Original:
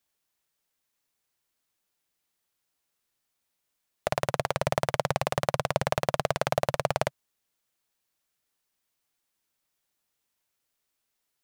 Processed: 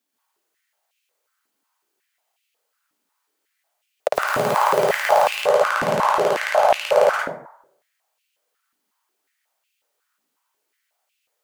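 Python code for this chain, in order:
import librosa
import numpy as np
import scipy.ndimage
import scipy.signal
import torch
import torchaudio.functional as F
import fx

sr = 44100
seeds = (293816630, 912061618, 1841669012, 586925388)

y = fx.zero_step(x, sr, step_db=-30.5, at=(4.13, 5.29))
y = fx.rev_plate(y, sr, seeds[0], rt60_s=0.7, hf_ratio=0.45, predelay_ms=115, drr_db=-5.0)
y = fx.filter_held_highpass(y, sr, hz=5.5, low_hz=260.0, high_hz=2600.0)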